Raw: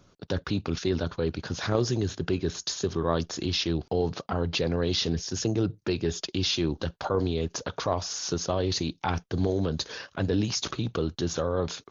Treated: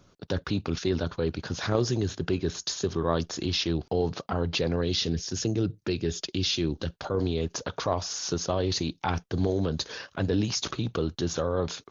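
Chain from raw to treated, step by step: 4.81–7.19 dynamic EQ 920 Hz, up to -7 dB, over -45 dBFS, Q 1.1

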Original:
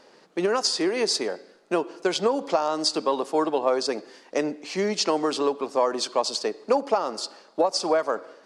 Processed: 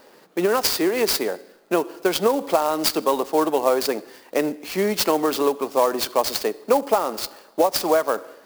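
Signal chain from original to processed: clock jitter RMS 0.029 ms; gain +3.5 dB

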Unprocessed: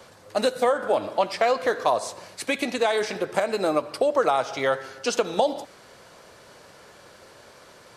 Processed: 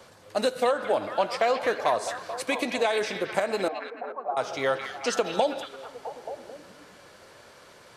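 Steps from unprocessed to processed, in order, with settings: 3.68–4.37 vocal tract filter a; delay with a stepping band-pass 0.22 s, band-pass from 2700 Hz, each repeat -0.7 oct, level -3.5 dB; gain -2.5 dB

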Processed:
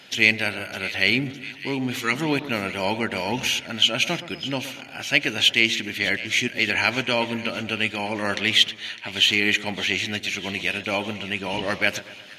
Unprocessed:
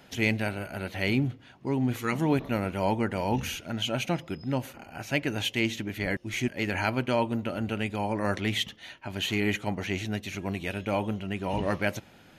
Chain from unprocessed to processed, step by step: weighting filter D; split-band echo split 1800 Hz, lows 0.122 s, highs 0.607 s, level -14 dB; gain +2 dB

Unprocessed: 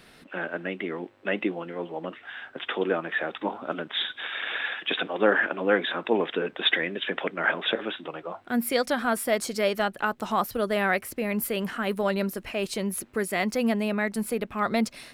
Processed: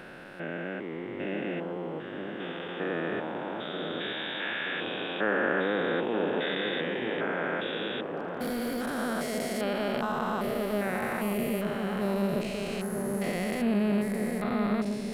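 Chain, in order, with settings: stepped spectrum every 0.4 s; low shelf 96 Hz +8.5 dB; on a send: dark delay 0.929 s, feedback 54%, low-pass 1100 Hz, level -5 dB; 8.17–8.99 on the sum: hard clip -27.5 dBFS, distortion -26 dB

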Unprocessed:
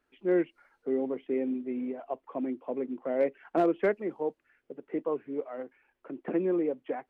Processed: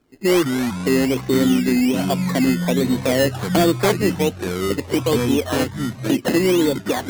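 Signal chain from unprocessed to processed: recorder AGC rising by 9.8 dB/s; low-pass opened by the level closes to 660 Hz, open at -24.5 dBFS; graphic EQ 125/250/2000 Hz +12/+4/+12 dB; in parallel at +2.5 dB: compressor, threshold -29 dBFS, peak gain reduction 11.5 dB; on the sum: decimation with a swept rate 15×, swing 60% 1.3 Hz; soft clip -15 dBFS, distortion -17 dB; echoes that change speed 0.104 s, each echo -6 st, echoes 3, each echo -6 dB; gain +5 dB

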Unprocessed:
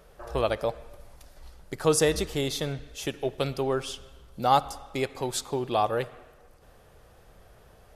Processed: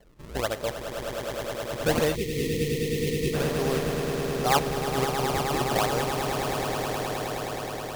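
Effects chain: nonlinear frequency compression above 3600 Hz 4:1; decimation with a swept rate 34×, swing 160% 1.3 Hz; on a send: swelling echo 0.105 s, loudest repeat 8, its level -9 dB; on the sum: spectral gain 2.15–3.34, 530–1800 Hz -25 dB; gain -2.5 dB

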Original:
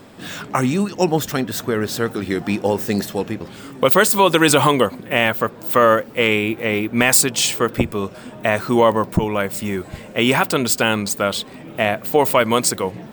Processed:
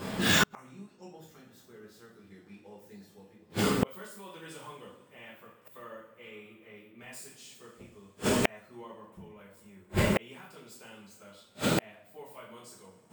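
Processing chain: two-slope reverb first 0.55 s, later 4.1 s, from -22 dB, DRR -7.5 dB; flipped gate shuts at -12 dBFS, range -40 dB

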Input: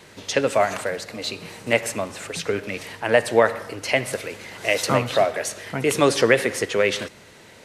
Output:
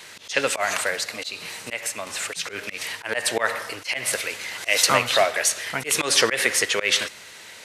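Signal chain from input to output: tilt shelf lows -9 dB, about 750 Hz; auto swell 0.127 s; 1.23–2.07 compressor 2:1, threshold -31 dBFS, peak gain reduction 8 dB

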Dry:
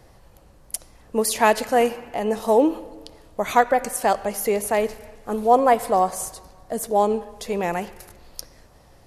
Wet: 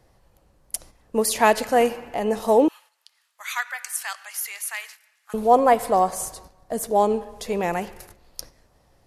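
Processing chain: 2.68–5.34 HPF 1400 Hz 24 dB/oct; gate -44 dBFS, range -8 dB

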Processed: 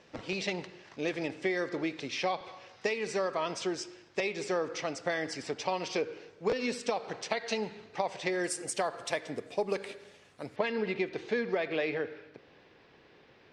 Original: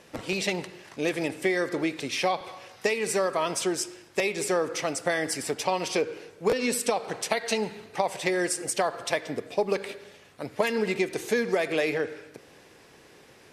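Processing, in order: LPF 6100 Hz 24 dB/oct, from 8.44 s 10000 Hz, from 10.56 s 4300 Hz; gain -5.5 dB

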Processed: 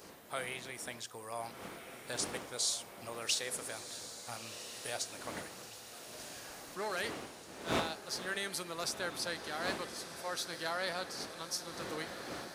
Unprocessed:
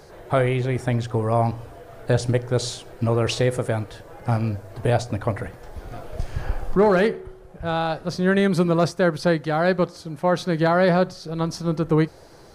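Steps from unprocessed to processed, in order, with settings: wind noise 310 Hz -21 dBFS; differentiator; diffused feedback echo 1.393 s, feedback 56%, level -10 dB

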